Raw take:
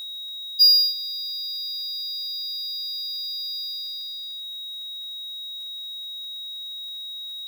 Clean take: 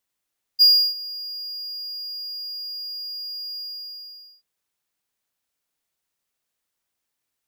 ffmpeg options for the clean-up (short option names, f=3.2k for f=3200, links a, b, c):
-af "adeclick=t=4,bandreject=f=3.8k:w=30,afftdn=nr=30:nf=-35"